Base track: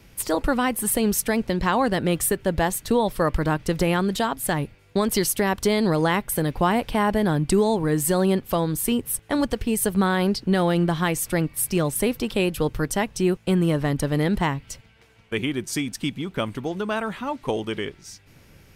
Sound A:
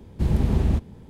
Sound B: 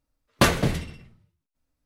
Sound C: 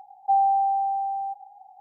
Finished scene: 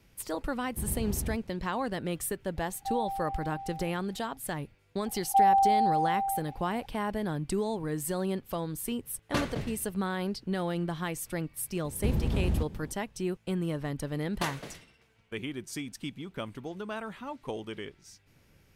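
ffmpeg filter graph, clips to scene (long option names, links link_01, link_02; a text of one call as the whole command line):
ffmpeg -i bed.wav -i cue0.wav -i cue1.wav -i cue2.wav -filter_complex "[1:a]asplit=2[link_01][link_02];[3:a]asplit=2[link_03][link_04];[2:a]asplit=2[link_05][link_06];[0:a]volume=-11dB[link_07];[link_05]highshelf=frequency=9300:gain=-9.5[link_08];[link_02]acompressor=threshold=-21dB:ratio=6:attack=3.2:release=140:knee=1:detection=peak[link_09];[link_06]highpass=frequency=580:poles=1[link_10];[link_01]atrim=end=1.09,asetpts=PTS-STARTPTS,volume=-14dB,afade=type=in:duration=0.004:curve=hsin,afade=type=out:start_time=1.086:duration=0.004:curve=hsin,adelay=570[link_11];[link_03]atrim=end=1.8,asetpts=PTS-STARTPTS,volume=-14dB,afade=type=in:duration=0.004:curve=hsin,afade=type=out:start_time=1.796:duration=0.004:curve=hsin,adelay=2570[link_12];[link_04]atrim=end=1.8,asetpts=PTS-STARTPTS,volume=-1.5dB,afade=type=in:duration=0.004:curve=hsin,afade=type=out:start_time=1.796:duration=0.004:curve=hsin,adelay=5060[link_13];[link_08]atrim=end=1.85,asetpts=PTS-STARTPTS,volume=-12dB,afade=type=in:duration=0.004:curve=hsin,afade=type=out:start_time=1.846:duration=0.004:curve=hsin,adelay=8930[link_14];[link_09]atrim=end=1.09,asetpts=PTS-STARTPTS,volume=-2dB,afade=type=in:duration=0.004:curve=hsin,afade=type=out:start_time=1.086:duration=0.004:curve=hsin,adelay=11840[link_15];[link_10]atrim=end=1.85,asetpts=PTS-STARTPTS,volume=-13.5dB,afade=type=in:duration=0.004:curve=hsin,afade=type=out:start_time=1.846:duration=0.004:curve=hsin,adelay=14000[link_16];[link_07][link_11][link_12][link_13][link_14][link_15][link_16]amix=inputs=7:normalize=0" out.wav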